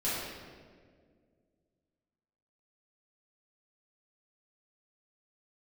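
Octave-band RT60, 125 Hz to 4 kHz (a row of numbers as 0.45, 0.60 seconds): 2.5, 2.6, 2.3, 1.5, 1.4, 1.1 seconds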